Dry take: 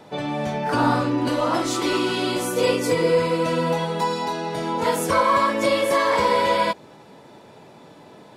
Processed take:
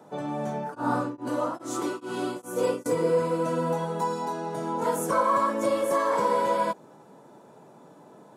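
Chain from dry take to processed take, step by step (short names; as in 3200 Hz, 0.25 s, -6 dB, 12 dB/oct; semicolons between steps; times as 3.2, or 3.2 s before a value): HPF 130 Hz 24 dB/oct; band shelf 3100 Hz -10.5 dB; 0.55–2.86 beating tremolo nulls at 2.4 Hz; gain -4.5 dB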